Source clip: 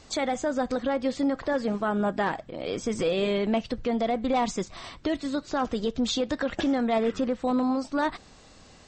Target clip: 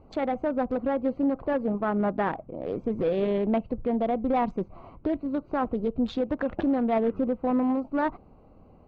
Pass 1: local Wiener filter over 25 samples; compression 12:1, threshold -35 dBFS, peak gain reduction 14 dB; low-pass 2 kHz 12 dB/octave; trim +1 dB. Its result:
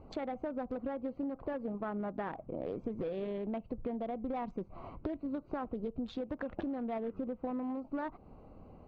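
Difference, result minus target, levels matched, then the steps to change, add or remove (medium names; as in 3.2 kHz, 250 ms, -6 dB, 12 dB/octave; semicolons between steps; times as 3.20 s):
compression: peak gain reduction +14 dB
remove: compression 12:1, threshold -35 dBFS, peak gain reduction 14 dB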